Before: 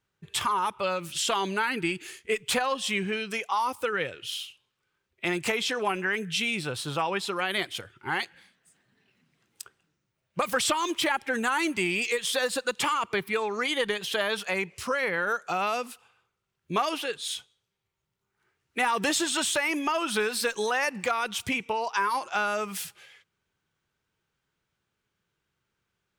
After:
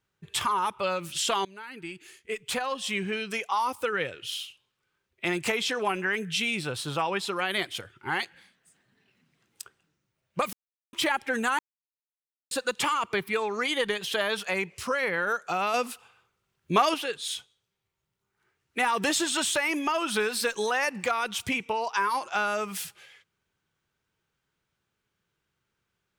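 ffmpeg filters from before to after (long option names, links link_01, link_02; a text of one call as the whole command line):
ffmpeg -i in.wav -filter_complex "[0:a]asplit=8[link_01][link_02][link_03][link_04][link_05][link_06][link_07][link_08];[link_01]atrim=end=1.45,asetpts=PTS-STARTPTS,afade=type=out:start_time=1.446:duration=0.004:curve=hsin:silence=0.0891251[link_09];[link_02]atrim=start=1.45:end=10.53,asetpts=PTS-STARTPTS,afade=type=in:duration=1.87:silence=0.0891251,afade=type=out:start_time=9.076:duration=0.004:curve=hsin[link_10];[link_03]atrim=start=10.53:end=10.93,asetpts=PTS-STARTPTS,volume=0[link_11];[link_04]atrim=start=10.93:end=11.59,asetpts=PTS-STARTPTS,afade=type=in:duration=0.004:curve=hsin,afade=type=out:start_time=0.656:duration=0.004:curve=hsin[link_12];[link_05]atrim=start=11.59:end=12.51,asetpts=PTS-STARTPTS,volume=0[link_13];[link_06]atrim=start=12.51:end=15.742,asetpts=PTS-STARTPTS,afade=type=in:duration=0.004:curve=hsin[link_14];[link_07]atrim=start=15.738:end=16.942,asetpts=PTS-STARTPTS,volume=4.5dB[link_15];[link_08]atrim=start=16.938[link_16];[link_09][link_10][link_11][link_12][link_13][link_14]concat=n=6:v=0:a=1[link_17];[link_17][link_15]acrossfade=duration=0.004:curve1=hsin:curve2=hsin[link_18];[link_18][link_16]acrossfade=duration=0.004:curve1=hsin:curve2=hsin" out.wav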